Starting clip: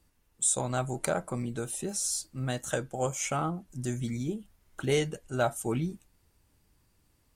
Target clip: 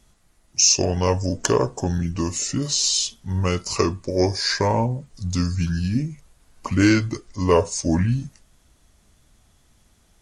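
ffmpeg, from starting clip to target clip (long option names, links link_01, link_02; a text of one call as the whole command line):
ffmpeg -i in.wav -af "asetrate=31752,aresample=44100,acontrast=68,volume=3.5dB" out.wav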